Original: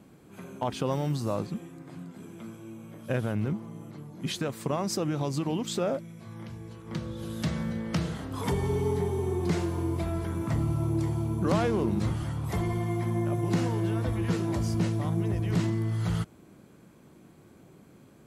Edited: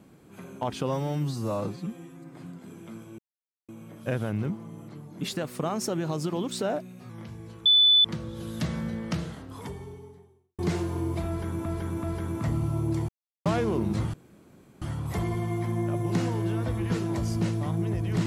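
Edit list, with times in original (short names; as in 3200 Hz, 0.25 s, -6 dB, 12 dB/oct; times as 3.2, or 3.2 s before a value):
0.89–1.84 stretch 1.5×
2.71 insert silence 0.50 s
4.23–6.31 speed 110%
6.87 add tone 3490 Hz -15 dBFS 0.39 s
7.84–9.41 fade out quadratic
10.1–10.48 loop, 3 plays
11.15–11.52 mute
12.2 insert room tone 0.68 s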